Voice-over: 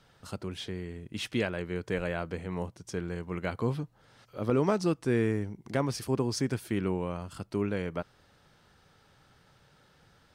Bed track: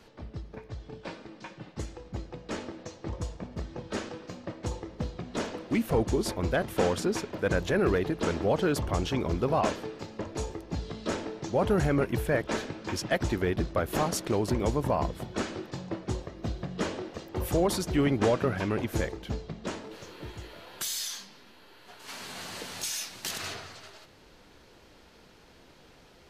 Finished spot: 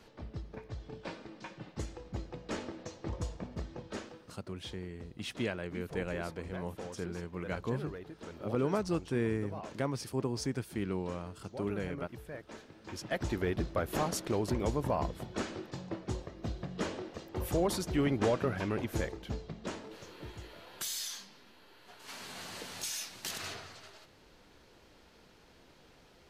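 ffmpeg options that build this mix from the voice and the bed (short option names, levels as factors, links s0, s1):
-filter_complex "[0:a]adelay=4050,volume=0.562[s0];[1:a]volume=3.55,afade=t=out:st=3.48:d=0.91:silence=0.16788,afade=t=in:st=12.69:d=0.69:silence=0.211349[s1];[s0][s1]amix=inputs=2:normalize=0"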